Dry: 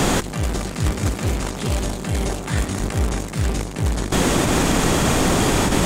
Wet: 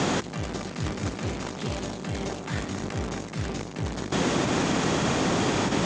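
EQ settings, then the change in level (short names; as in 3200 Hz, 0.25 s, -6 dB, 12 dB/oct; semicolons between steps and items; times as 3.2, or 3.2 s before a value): HPF 110 Hz 12 dB/oct; synth low-pass 6700 Hz, resonance Q 1.9; air absorption 110 m; -5.5 dB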